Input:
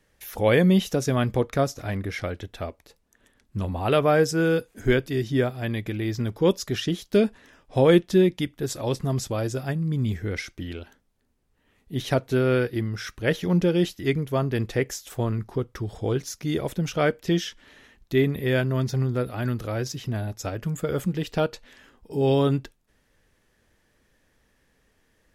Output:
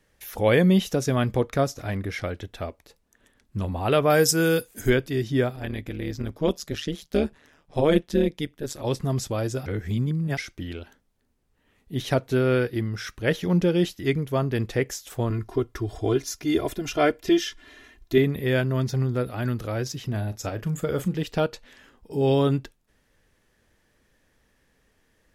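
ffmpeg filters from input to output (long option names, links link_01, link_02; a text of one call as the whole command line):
ffmpeg -i in.wav -filter_complex "[0:a]asettb=1/sr,asplit=3[link_01][link_02][link_03];[link_01]atrim=end=4.104[link_04];[link_02]atrim=start=4.1:end=4.9,asetpts=PTS-STARTPTS,afade=type=in:duration=0.004:curve=qsin,afade=type=out:start_time=0.796:duration=0.004:curve=qsin,aemphasis=mode=production:type=75kf[link_05];[link_03]atrim=start=4.896[link_06];[link_04][link_05]acrossfade=duration=0.004:curve1=hsin:curve2=qsin[link_07];[link_07][link_06]acrossfade=duration=0.004:curve1=qsin:curve2=hsin,asettb=1/sr,asplit=3[link_08][link_09][link_10];[link_08]atrim=end=5.564[link_11];[link_09]atrim=start=5.56:end=8.85,asetpts=PTS-STARTPTS,afade=type=in:duration=0.004:curve=qsin,afade=type=out:start_time=3.286:duration=0.004:curve=qsin,tremolo=f=150:d=0.824[link_12];[link_10]atrim=start=8.846[link_13];[link_11][link_12]acrossfade=duration=0.004:curve1=hsin:curve2=qsin[link_14];[link_14][link_13]acrossfade=duration=0.004:curve1=qsin:curve2=hsin,asettb=1/sr,asplit=3[link_15][link_16][link_17];[link_15]atrim=end=15.304[link_18];[link_16]atrim=start=15.3:end=18.18,asetpts=PTS-STARTPTS,afade=type=in:duration=0.004:curve=qsin,afade=type=out:start_time=2.876:duration=0.004:curve=qsin,aecho=1:1:2.9:0.86,atrim=end_sample=127008[link_19];[link_17]atrim=start=18.176[link_20];[link_18][link_19]acrossfade=duration=0.004:curve1=hsin:curve2=qsin[link_21];[link_21][link_20]acrossfade=duration=0.004:curve1=qsin:curve2=hsin,asettb=1/sr,asplit=3[link_22][link_23][link_24];[link_22]atrim=end=20.084[link_25];[link_23]atrim=start=20.08:end=21.23,asetpts=PTS-STARTPTS,afade=type=in:duration=0.004:curve=qsin,afade=type=out:start_time=1.146:duration=0.004:curve=qsin,asplit=2[link_26][link_27];[link_27]adelay=38,volume=-14dB[link_28];[link_26][link_28]amix=inputs=2:normalize=0,atrim=end_sample=50715[link_29];[link_24]atrim=start=21.226[link_30];[link_25][link_29]acrossfade=duration=0.004:curve1=hsin:curve2=qsin[link_31];[link_31][link_30]acrossfade=duration=0.004:curve1=qsin:curve2=hsin,asplit=3[link_32][link_33][link_34];[link_32]atrim=end=9.662[link_35];[link_33]atrim=start=9.658:end=10.372,asetpts=PTS-STARTPTS,areverse[link_36];[link_34]atrim=start=10.368[link_37];[link_35][link_36]acrossfade=duration=0.004:curve1=hsin:curve2=hsin[link_38];[link_38][link_37]acrossfade=duration=0.004:curve1=hsin:curve2=hsin" out.wav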